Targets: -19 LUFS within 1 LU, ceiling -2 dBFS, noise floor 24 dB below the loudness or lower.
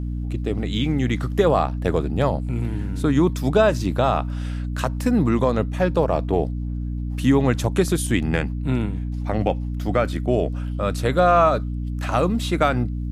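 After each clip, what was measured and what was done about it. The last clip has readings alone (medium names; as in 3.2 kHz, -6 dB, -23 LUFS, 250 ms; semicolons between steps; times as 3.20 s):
hum 60 Hz; highest harmonic 300 Hz; hum level -24 dBFS; loudness -22.0 LUFS; peak level -5.5 dBFS; loudness target -19.0 LUFS
-> hum notches 60/120/180/240/300 Hz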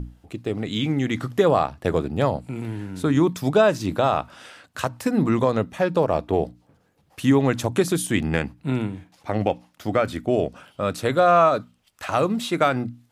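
hum not found; loudness -22.5 LUFS; peak level -6.5 dBFS; loudness target -19.0 LUFS
-> trim +3.5 dB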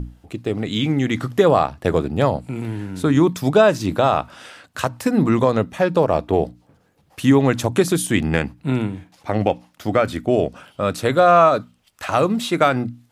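loudness -19.0 LUFS; peak level -3.0 dBFS; noise floor -59 dBFS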